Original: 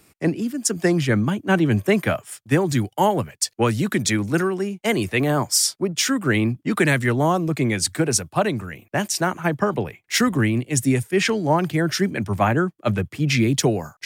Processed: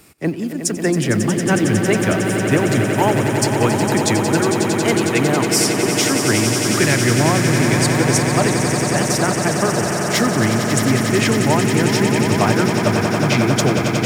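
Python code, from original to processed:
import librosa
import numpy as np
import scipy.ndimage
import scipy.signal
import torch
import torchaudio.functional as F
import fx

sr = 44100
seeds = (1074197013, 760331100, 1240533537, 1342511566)

p1 = fx.law_mismatch(x, sr, coded='mu')
y = p1 + fx.echo_swell(p1, sr, ms=91, loudest=8, wet_db=-9, dry=0)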